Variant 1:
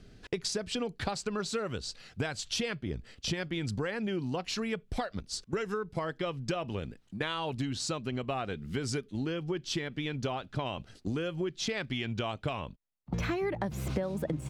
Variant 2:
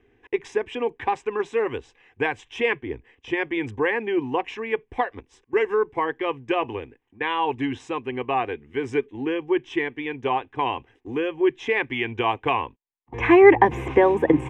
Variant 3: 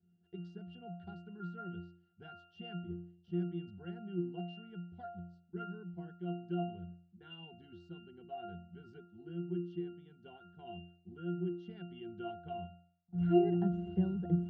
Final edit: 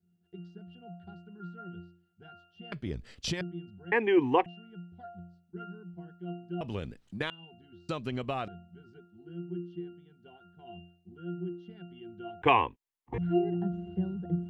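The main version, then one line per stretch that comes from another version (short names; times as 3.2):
3
2.72–3.41 from 1
3.92–4.46 from 2
6.61–7.3 from 1
7.89–8.48 from 1
12.42–13.18 from 2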